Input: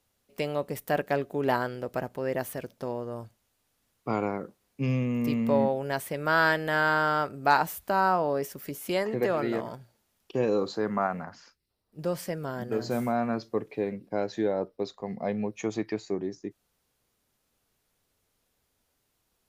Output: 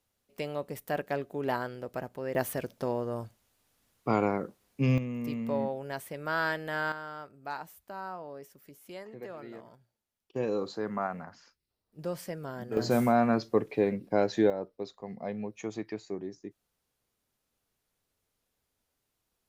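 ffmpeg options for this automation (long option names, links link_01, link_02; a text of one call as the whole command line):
ffmpeg -i in.wav -af "asetnsamples=nb_out_samples=441:pad=0,asendcmd='2.35 volume volume 2dB;4.98 volume volume -7dB;6.92 volume volume -16dB;10.36 volume volume -5dB;12.77 volume volume 3.5dB;14.5 volume volume -6dB',volume=-5dB" out.wav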